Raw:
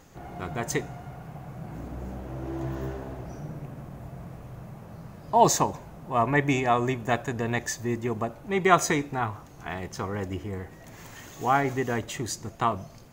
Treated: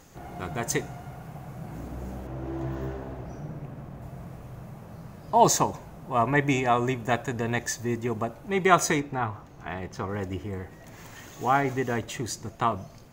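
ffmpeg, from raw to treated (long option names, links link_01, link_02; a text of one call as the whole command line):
ffmpeg -i in.wav -af "asetnsamples=nb_out_samples=441:pad=0,asendcmd='2.27 equalizer g -5;4.02 equalizer g 1.5;9 equalizer g -9;10.09 equalizer g -1.5',equalizer=frequency=11000:width_type=o:width=2:gain=4.5" out.wav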